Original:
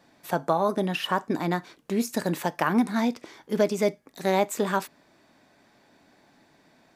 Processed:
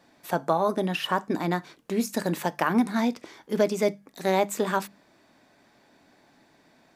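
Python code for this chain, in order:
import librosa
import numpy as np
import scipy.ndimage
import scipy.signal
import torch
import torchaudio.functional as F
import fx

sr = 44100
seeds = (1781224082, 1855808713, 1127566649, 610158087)

y = fx.hum_notches(x, sr, base_hz=50, count=4)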